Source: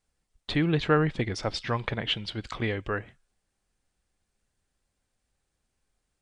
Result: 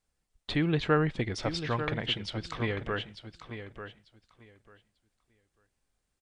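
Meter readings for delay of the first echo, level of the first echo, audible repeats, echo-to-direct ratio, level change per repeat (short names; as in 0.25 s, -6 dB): 0.893 s, -10.0 dB, 2, -10.0 dB, -15.0 dB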